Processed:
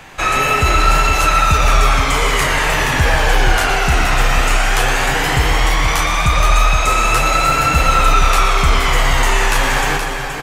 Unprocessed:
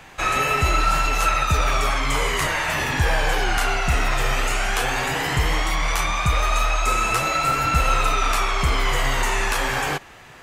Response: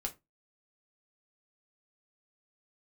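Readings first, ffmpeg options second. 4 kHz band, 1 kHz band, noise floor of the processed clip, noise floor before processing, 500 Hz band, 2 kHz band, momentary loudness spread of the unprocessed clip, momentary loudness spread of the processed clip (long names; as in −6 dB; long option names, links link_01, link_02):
+7.0 dB, +7.0 dB, −21 dBFS, −45 dBFS, +6.5 dB, +7.0 dB, 3 LU, 3 LU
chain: -filter_complex "[0:a]aecho=1:1:246|473:0.237|0.447,acontrast=47,asplit=2[link_01][link_02];[1:a]atrim=start_sample=2205,adelay=117[link_03];[link_02][link_03]afir=irnorm=-1:irlink=0,volume=-9.5dB[link_04];[link_01][link_04]amix=inputs=2:normalize=0"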